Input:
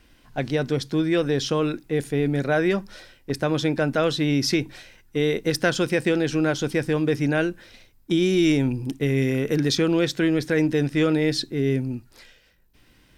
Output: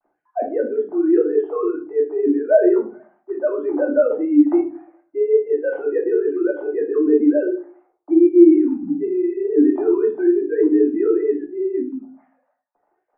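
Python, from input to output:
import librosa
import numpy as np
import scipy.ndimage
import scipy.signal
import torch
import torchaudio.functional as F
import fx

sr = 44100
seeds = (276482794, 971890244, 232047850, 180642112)

y = fx.sine_speech(x, sr)
y = scipy.signal.sosfilt(scipy.signal.butter(4, 1200.0, 'lowpass', fs=sr, output='sos'), y)
y = fx.peak_eq(y, sr, hz=730.0, db=13.5, octaves=0.37)
y = fx.room_shoebox(y, sr, seeds[0], volume_m3=200.0, walls='furnished', distance_m=2.6)
y = y * 10.0 ** (-1.5 / 20.0)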